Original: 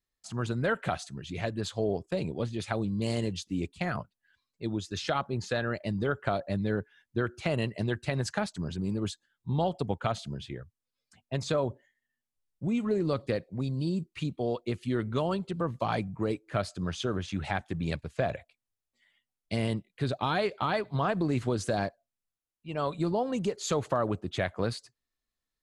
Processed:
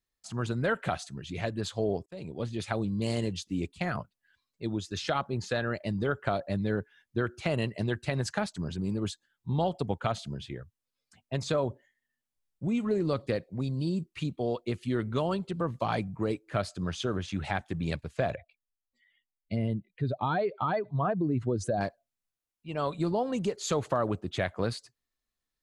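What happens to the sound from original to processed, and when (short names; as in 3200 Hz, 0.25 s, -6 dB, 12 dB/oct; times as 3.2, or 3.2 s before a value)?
2.06–2.53 fade in, from -24 dB
18.35–21.81 spectral contrast raised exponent 1.6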